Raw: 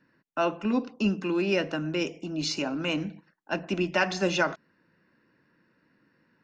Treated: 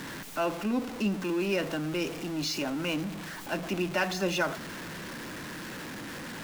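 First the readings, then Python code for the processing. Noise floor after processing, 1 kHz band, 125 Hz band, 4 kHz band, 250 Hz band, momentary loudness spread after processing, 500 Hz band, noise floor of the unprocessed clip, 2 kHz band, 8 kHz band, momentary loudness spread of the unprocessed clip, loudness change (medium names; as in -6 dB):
-40 dBFS, -2.0 dB, -1.5 dB, -1.5 dB, -2.0 dB, 10 LU, -2.5 dB, -70 dBFS, -2.0 dB, +1.5 dB, 8 LU, -3.5 dB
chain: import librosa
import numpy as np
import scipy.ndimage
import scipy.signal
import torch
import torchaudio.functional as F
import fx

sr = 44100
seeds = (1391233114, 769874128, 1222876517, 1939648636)

y = x + 0.5 * 10.0 ** (-29.0 / 20.0) * np.sign(x)
y = y * 10.0 ** (-5.0 / 20.0)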